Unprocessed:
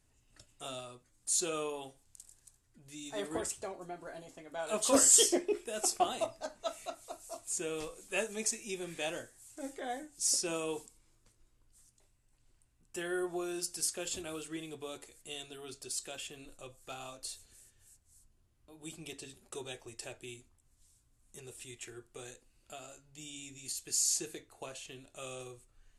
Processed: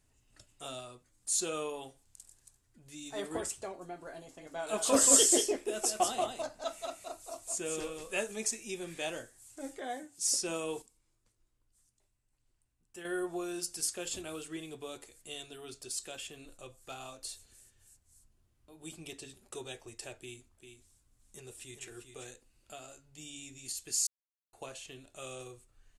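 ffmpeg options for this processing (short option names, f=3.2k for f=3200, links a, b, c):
-filter_complex "[0:a]asplit=3[a][b][c];[a]afade=t=out:st=4.4:d=0.02[d];[b]aecho=1:1:181:0.596,afade=t=in:st=4.4:d=0.02,afade=t=out:st=8.3:d=0.02[e];[c]afade=t=in:st=8.3:d=0.02[f];[d][e][f]amix=inputs=3:normalize=0,asettb=1/sr,asplit=3[g][h][i];[g]atrim=end=9.814[j];[h]atrim=start=9.81:end=10.32,asetpts=PTS-STARTPTS,afade=t=in:d=0.004:c=qsin,afade=t=out:st=0.506:d=0.004:c=qsin,highpass=100[k];[i]atrim=start=10.316[l];[j][k]acrossfade=d=0.004:c1=hsin:c2=qsin[m];[m][l]acrossfade=d=0.004:c1=qsin:c2=hsin,asettb=1/sr,asplit=3[n][o][p];[n]atrim=end=20.184[q];[o]atrim=start=20.18:end=22.27,asetpts=PTS-STARTPTS,afade=t=in:d=0.004:c=qsin,afade=t=out:st=2.086:d=0.004:c=qsin,aecho=1:1:396:0.422,atrim=end_sample=92169[r];[p]atrim=start=22.266[s];[q][r]acrossfade=d=0.004:c1=hsin:c2=qsin[t];[t][s]acrossfade=d=0.004:c1=qsin:c2=hsin,asplit=5[u][v][w][x][y];[u]atrim=end=10.822[z];[v]atrim=start=10.818:end=13.052,asetpts=PTS-STARTPTS,volume=-7.5dB[aa];[w]atrim=start=13.048:end=24.07,asetpts=PTS-STARTPTS,afade=t=out:st=11.018:d=0.004:c=hsin[ab];[x]atrim=start=24.07:end=24.53,asetpts=PTS-STARTPTS,volume=0[ac];[y]atrim=start=24.53,asetpts=PTS-STARTPTS,afade=t=in:d=0.004:c=hsin[ad];[z][aa]acrossfade=d=0.004:c1=hsin:c2=hsin[ae];[ab][ac][ad]concat=n=3:v=0:a=1[af];[ae][af]acrossfade=d=0.004:c1=hsin:c2=hsin"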